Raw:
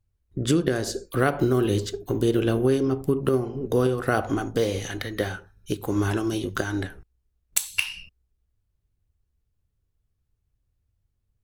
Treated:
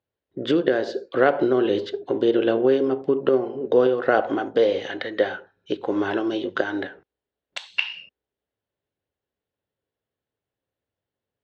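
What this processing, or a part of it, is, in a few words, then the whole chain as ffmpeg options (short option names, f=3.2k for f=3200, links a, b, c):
phone earpiece: -af "highpass=350,equalizer=f=540:t=q:w=4:g=5,equalizer=f=1.2k:t=q:w=4:g=-6,equalizer=f=2.4k:t=q:w=4:g=-6,lowpass=f=3.5k:w=0.5412,lowpass=f=3.5k:w=1.3066,volume=5dB"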